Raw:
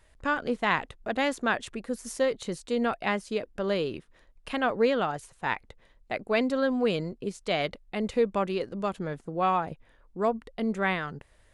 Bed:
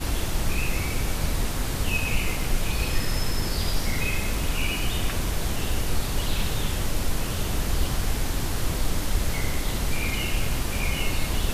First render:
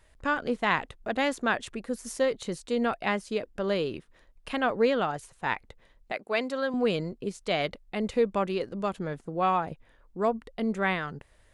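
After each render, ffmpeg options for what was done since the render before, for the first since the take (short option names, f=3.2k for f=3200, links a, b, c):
-filter_complex "[0:a]asettb=1/sr,asplit=3[a][b][c];[a]atrim=end=6.124[d];[b]atrim=start=6.12:end=6.74,asetpts=PTS-STARTPTS,afade=t=in:d=0.004:c=qsin,afade=t=out:st=0.616:d=0.004:c=qsin,highpass=f=540:p=1[e];[c]atrim=start=6.736[f];[d][e]acrossfade=d=0.004:c1=hsin:c2=qsin[g];[g][f]acrossfade=d=0.004:c1=qsin:c2=hsin"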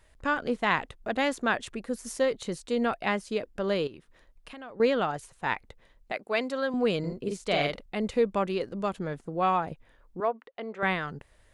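-filter_complex "[0:a]asettb=1/sr,asplit=3[a][b][c];[a]atrim=end=3.874[d];[b]atrim=start=3.87:end=4.8,asetpts=PTS-STARTPTS,afade=t=in:d=0.004:c=qsin,afade=t=out:st=0.926:d=0.004:c=qsin,acompressor=threshold=-45dB:ratio=3:attack=3.2:release=140:knee=1:detection=peak[e];[c]atrim=start=4.796[f];[d][e]acrossfade=d=0.004:c1=hsin:c2=qsin[g];[g][f]acrossfade=d=0.004:c1=qsin:c2=hsin,asettb=1/sr,asplit=3[h][i][j];[h]atrim=end=6.994[k];[i]atrim=start=6.99:end=7.86,asetpts=PTS-STARTPTS,afade=t=in:d=0.004:c=qsin,afade=t=out:st=0.866:d=0.004:c=qsin,asplit=2[l][m];[m]adelay=48,volume=-3dB[n];[l][n]amix=inputs=2:normalize=0,atrim=end_sample=38367[o];[j]atrim=start=7.856[p];[k][o]acrossfade=d=0.004:c1=hsin:c2=qsin[q];[q][p]acrossfade=d=0.004:c1=qsin:c2=hsin,asettb=1/sr,asplit=3[r][s][t];[r]atrim=end=10.204[u];[s]atrim=start=10.2:end=10.83,asetpts=PTS-STARTPTS,afade=t=in:d=0.004:c=qsin,afade=t=out:st=0.626:d=0.004:c=qsin,highpass=480,lowpass=2.8k[v];[t]atrim=start=10.826[w];[u][v]acrossfade=d=0.004:c1=hsin:c2=qsin[x];[x][w]acrossfade=d=0.004:c1=qsin:c2=hsin"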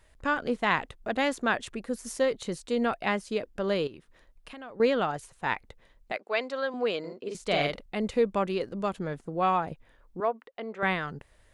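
-filter_complex "[0:a]asettb=1/sr,asplit=3[a][b][c];[a]atrim=end=6.174[d];[b]atrim=start=6.17:end=7.35,asetpts=PTS-STARTPTS,afade=t=in:d=0.004:c=qsin,afade=t=out:st=1.176:d=0.004:c=qsin,highpass=380,lowpass=5.7k[e];[c]atrim=start=7.346[f];[d][e]acrossfade=d=0.004:c1=hsin:c2=qsin[g];[g][f]acrossfade=d=0.004:c1=qsin:c2=hsin"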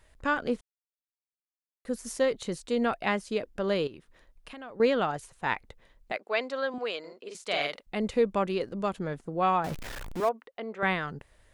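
-filter_complex "[0:a]asettb=1/sr,asplit=3[a][b][c];[a]atrim=end=6.784[d];[b]atrim=start=6.78:end=7.87,asetpts=PTS-STARTPTS,afade=t=in:d=0.004:c=qsin,afade=t=out:st=1.086:d=0.004:c=qsin,highpass=f=780:p=1[e];[c]atrim=start=7.866[f];[d][e]acrossfade=d=0.004:c1=hsin:c2=qsin[g];[g][f]acrossfade=d=0.004:c1=qsin:c2=hsin,asettb=1/sr,asplit=3[h][i][j];[h]atrim=end=9.644[k];[i]atrim=start=9.64:end=10.29,asetpts=PTS-STARTPTS,afade=t=in:d=0.004:c=qsin,afade=t=out:st=0.646:d=0.004:c=qsin,aeval=exprs='val(0)+0.5*0.0224*sgn(val(0))':c=same[l];[j]atrim=start=10.286[m];[k][l]acrossfade=d=0.004:c1=hsin:c2=qsin[n];[n][m]acrossfade=d=0.004:c1=qsin:c2=hsin,asplit=3[o][p][q];[o]atrim=end=0.61,asetpts=PTS-STARTPTS,afade=t=out:st=0.606:d=0.004:c=hsin[r];[p]atrim=start=0.61:end=1.85,asetpts=PTS-STARTPTS,volume=0[s];[q]atrim=start=1.85,asetpts=PTS-STARTPTS,afade=t=in:d=0.004:c=hsin[t];[r][s][t]concat=n=3:v=0:a=1"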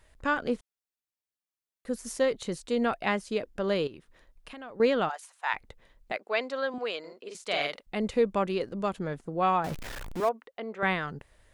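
-filter_complex "[0:a]asplit=3[a][b][c];[a]afade=t=out:st=5.08:d=0.02[d];[b]highpass=f=710:w=0.5412,highpass=f=710:w=1.3066,afade=t=in:st=5.08:d=0.02,afade=t=out:st=5.53:d=0.02[e];[c]afade=t=in:st=5.53:d=0.02[f];[d][e][f]amix=inputs=3:normalize=0"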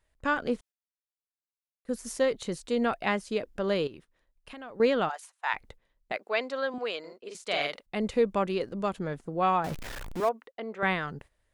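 -af "agate=range=-13dB:threshold=-49dB:ratio=16:detection=peak"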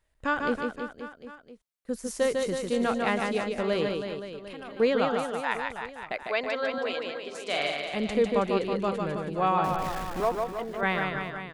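-af "aecho=1:1:150|322.5|520.9|749|1011:0.631|0.398|0.251|0.158|0.1"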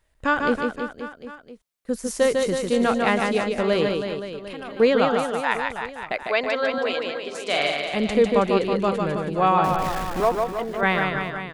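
-af "volume=6dB"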